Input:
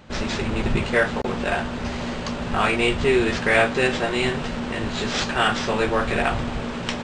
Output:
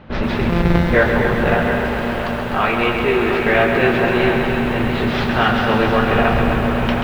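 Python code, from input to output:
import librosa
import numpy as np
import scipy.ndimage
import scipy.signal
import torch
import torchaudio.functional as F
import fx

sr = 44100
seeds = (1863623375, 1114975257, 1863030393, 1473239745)

y = fx.sample_sort(x, sr, block=256, at=(0.49, 0.9))
y = fx.low_shelf(y, sr, hz=340.0, db=-7.0, at=(1.69, 3.46))
y = fx.rider(y, sr, range_db=3, speed_s=2.0)
y = fx.air_absorb(y, sr, metres=330.0)
y = fx.echo_multitap(y, sr, ms=(224, 251, 568, 721), db=(-14.5, -10.0, -13.0, -9.5))
y = fx.echo_crushed(y, sr, ms=133, feedback_pct=80, bits=8, wet_db=-7.0)
y = y * 10.0 ** (5.0 / 20.0)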